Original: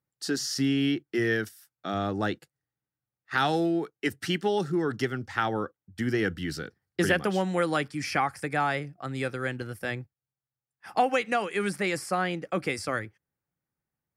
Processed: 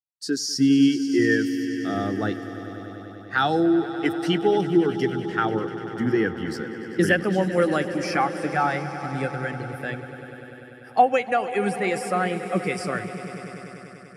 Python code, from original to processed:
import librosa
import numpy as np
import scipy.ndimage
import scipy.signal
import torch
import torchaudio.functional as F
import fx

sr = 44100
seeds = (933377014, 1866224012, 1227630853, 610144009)

y = fx.high_shelf(x, sr, hz=4400.0, db=9.0)
y = fx.echo_swell(y, sr, ms=98, loudest=5, wet_db=-12.5)
y = fx.spectral_expand(y, sr, expansion=1.5)
y = y * librosa.db_to_amplitude(5.0)